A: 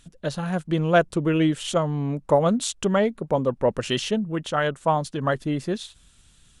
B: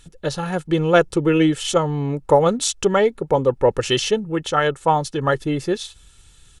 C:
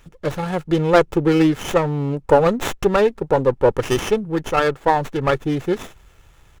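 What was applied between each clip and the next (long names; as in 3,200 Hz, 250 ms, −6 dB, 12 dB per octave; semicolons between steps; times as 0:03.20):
comb filter 2.3 ms, depth 53%; dynamic equaliser 5,700 Hz, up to +4 dB, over −48 dBFS, Q 2.9; level +4 dB
windowed peak hold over 9 samples; level +1 dB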